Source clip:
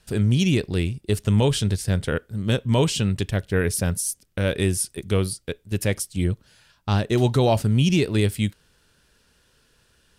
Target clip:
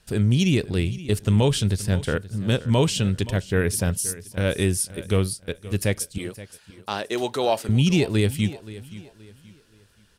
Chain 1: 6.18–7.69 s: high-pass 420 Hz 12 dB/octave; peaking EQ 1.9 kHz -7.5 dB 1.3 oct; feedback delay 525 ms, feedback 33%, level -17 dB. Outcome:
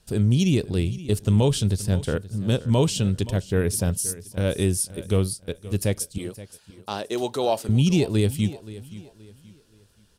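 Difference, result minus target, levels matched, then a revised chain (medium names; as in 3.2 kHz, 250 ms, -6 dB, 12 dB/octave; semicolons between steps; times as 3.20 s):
2 kHz band -5.5 dB
6.18–7.69 s: high-pass 420 Hz 12 dB/octave; feedback delay 525 ms, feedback 33%, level -17 dB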